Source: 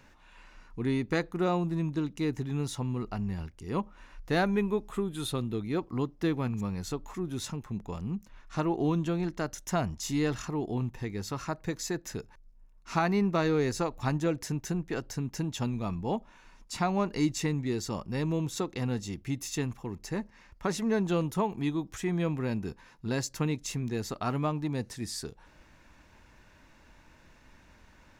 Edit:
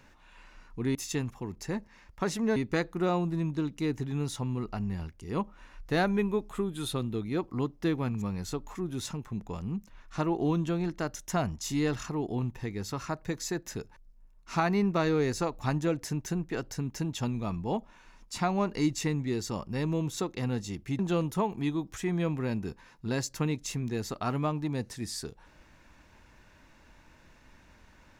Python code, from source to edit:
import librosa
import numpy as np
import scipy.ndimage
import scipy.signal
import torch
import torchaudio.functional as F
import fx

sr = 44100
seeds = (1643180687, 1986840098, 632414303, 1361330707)

y = fx.edit(x, sr, fx.move(start_s=19.38, length_s=1.61, to_s=0.95), tone=tone)